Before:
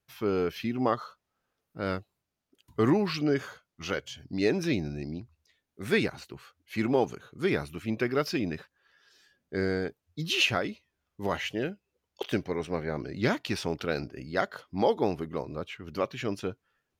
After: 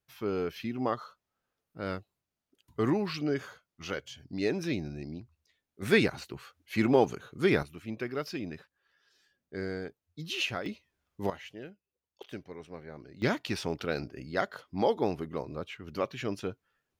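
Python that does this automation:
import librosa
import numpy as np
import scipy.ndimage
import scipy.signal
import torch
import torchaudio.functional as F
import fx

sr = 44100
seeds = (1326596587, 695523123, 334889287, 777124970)

y = fx.gain(x, sr, db=fx.steps((0.0, -4.0), (5.82, 2.0), (7.63, -7.0), (10.66, 0.0), (11.3, -13.0), (13.22, -2.0)))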